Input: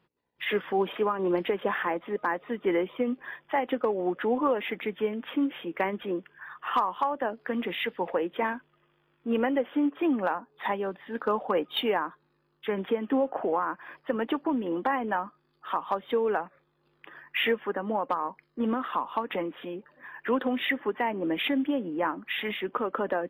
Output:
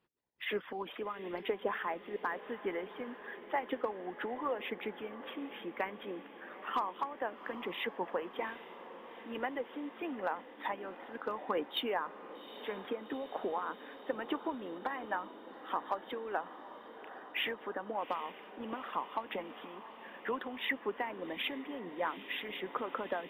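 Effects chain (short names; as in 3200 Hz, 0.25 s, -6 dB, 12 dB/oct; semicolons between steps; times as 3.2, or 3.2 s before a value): harmonic-percussive split harmonic -11 dB; diffused feedback echo 0.792 s, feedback 72%, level -14 dB; gain -5.5 dB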